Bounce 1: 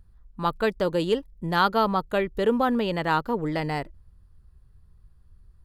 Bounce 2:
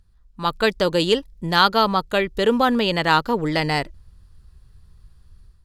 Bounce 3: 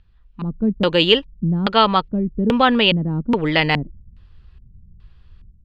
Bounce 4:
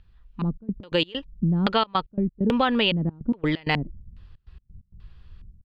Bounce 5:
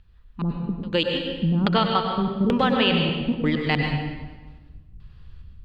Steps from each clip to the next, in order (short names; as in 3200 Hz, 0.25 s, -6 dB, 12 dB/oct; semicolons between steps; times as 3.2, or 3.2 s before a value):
AGC gain up to 9 dB; bell 5000 Hz +10 dB 2.4 oct; gain -3.5 dB
LFO low-pass square 1.2 Hz 220–2900 Hz; gain +2.5 dB
compressor 4:1, threshold -19 dBFS, peak gain reduction 9.5 dB; step gate "xxxxx.x.x.x" 131 bpm -24 dB
reverb RT60 1.3 s, pre-delay 92 ms, DRR 2 dB